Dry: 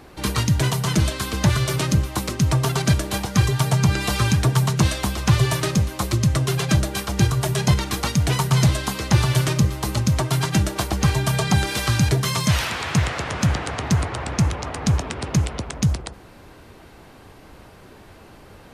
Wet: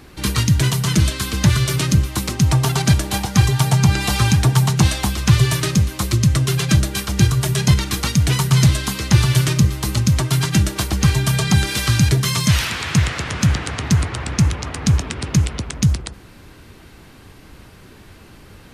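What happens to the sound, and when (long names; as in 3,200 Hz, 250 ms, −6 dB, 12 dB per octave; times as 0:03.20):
0:02.27–0:05.10: parametric band 800 Hz +9.5 dB 0.4 octaves
whole clip: parametric band 680 Hz −8.5 dB 1.7 octaves; level +4.5 dB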